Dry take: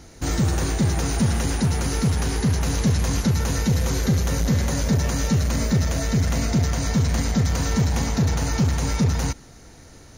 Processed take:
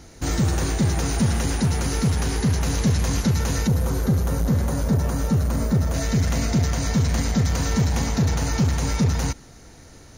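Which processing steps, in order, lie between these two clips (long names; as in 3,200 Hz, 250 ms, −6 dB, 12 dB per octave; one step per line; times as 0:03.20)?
0:03.67–0:05.94: flat-topped bell 3,600 Hz −8.5 dB 2.3 octaves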